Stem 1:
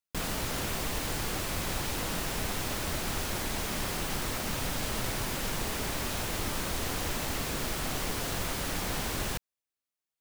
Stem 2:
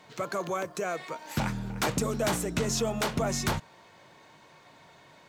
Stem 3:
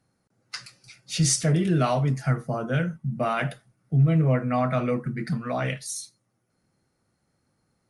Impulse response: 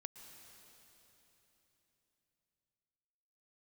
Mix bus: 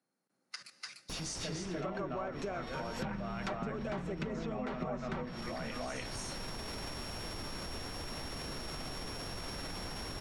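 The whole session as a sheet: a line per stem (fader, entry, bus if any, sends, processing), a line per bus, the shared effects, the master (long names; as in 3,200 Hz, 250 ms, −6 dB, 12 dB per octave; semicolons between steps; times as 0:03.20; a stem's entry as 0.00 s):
+1.5 dB, 0.95 s, bus A, no send, no echo send, samples sorted by size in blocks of 8 samples
−3.0 dB, 1.65 s, no bus, no send, no echo send, comb filter 5.2 ms, depth 64%; hum removal 66.51 Hz, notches 2
−3.5 dB, 0.00 s, bus A, send −11 dB, echo send −5.5 dB, high-pass filter 200 Hz 24 dB per octave
bus A: 0.0 dB, output level in coarse steps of 18 dB; brickwall limiter −30.5 dBFS, peak gain reduction 7 dB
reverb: on, RT60 3.7 s, pre-delay 107 ms
echo: single-tap delay 296 ms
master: treble cut that deepens with the level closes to 2,000 Hz, closed at −25 dBFS; downward compressor 4 to 1, threshold −36 dBFS, peak gain reduction 11 dB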